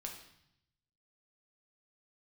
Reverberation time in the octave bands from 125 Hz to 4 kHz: 1.3, 1.0, 0.70, 0.75, 0.75, 0.80 s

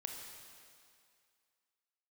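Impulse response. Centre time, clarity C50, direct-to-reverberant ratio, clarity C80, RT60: 74 ms, 3.0 dB, 2.0 dB, 4.5 dB, 2.2 s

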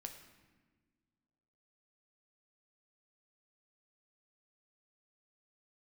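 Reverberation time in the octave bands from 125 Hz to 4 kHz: 2.0, 2.2, 1.6, 1.3, 1.3, 0.95 s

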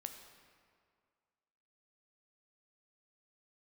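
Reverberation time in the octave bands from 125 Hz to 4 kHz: 1.9, 2.0, 2.1, 2.1, 1.8, 1.4 s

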